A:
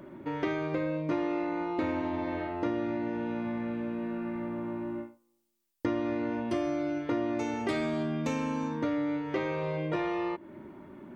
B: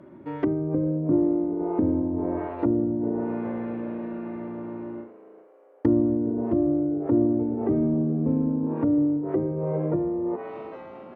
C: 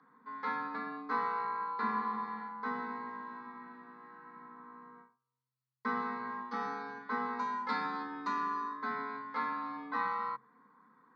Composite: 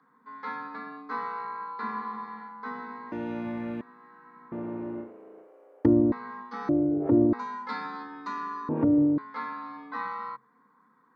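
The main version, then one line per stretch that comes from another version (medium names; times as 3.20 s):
C
3.12–3.81 s: from A
4.52–6.12 s: from B
6.69–7.33 s: from B
8.69–9.18 s: from B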